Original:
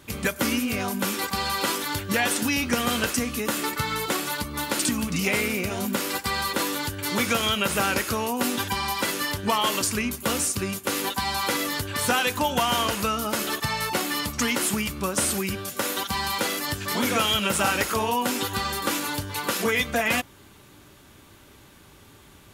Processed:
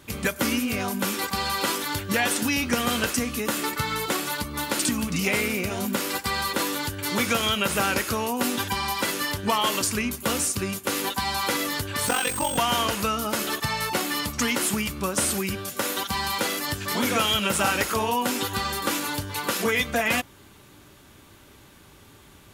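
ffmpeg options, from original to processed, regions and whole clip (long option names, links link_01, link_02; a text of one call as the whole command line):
ffmpeg -i in.wav -filter_complex "[0:a]asettb=1/sr,asplit=3[link_01][link_02][link_03];[link_01]atrim=end=12.074[link_04];[link_02]atrim=start=12.07:end=12.58,asetpts=PTS-STARTPTS,afade=type=in:duration=0.004:curve=qsin,afade=type=out:start_time=0.506:duration=0.004:curve=qsin,aeval=exprs='val(0)*sin(2*PI*23*n/s)':channel_layout=same,aeval=exprs='val(0)+0.0355*sin(2*PI*8400*n/s)':channel_layout=same,acrusher=bits=4:mix=0:aa=0.5[link_05];[link_03]atrim=start=12.576[link_06];[link_04][link_05]acrossfade=duration=0.004:curve1=hsin:curve2=qsin[link_07];[link_07][link_06]acrossfade=duration=0.004:curve1=qsin:curve2=hsin" out.wav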